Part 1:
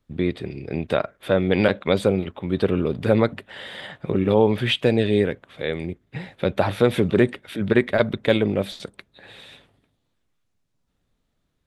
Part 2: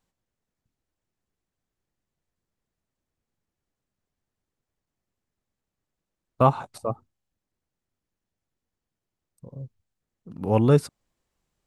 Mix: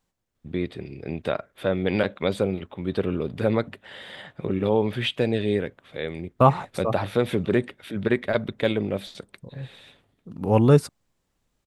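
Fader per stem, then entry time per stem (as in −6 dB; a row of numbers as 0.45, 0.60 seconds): −4.5, +2.0 decibels; 0.35, 0.00 seconds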